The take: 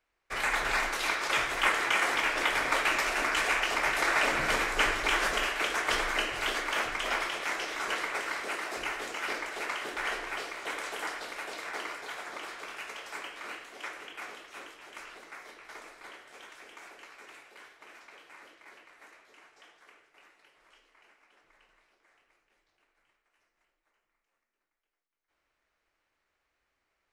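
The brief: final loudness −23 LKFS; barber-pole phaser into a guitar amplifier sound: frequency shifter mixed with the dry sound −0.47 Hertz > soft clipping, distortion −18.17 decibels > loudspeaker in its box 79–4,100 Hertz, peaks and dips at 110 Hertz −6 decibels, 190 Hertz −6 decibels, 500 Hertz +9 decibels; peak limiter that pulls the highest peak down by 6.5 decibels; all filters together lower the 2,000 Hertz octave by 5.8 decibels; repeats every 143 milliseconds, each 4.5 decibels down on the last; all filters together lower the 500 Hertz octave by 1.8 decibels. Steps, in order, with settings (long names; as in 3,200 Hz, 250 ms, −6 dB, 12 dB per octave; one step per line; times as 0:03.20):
parametric band 500 Hz −7 dB
parametric band 2,000 Hz −7 dB
brickwall limiter −22 dBFS
repeating echo 143 ms, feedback 60%, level −4.5 dB
frequency shifter mixed with the dry sound −0.47 Hz
soft clipping −28 dBFS
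loudspeaker in its box 79–4,100 Hz, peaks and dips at 110 Hz −6 dB, 190 Hz −6 dB, 500 Hz +9 dB
level +15 dB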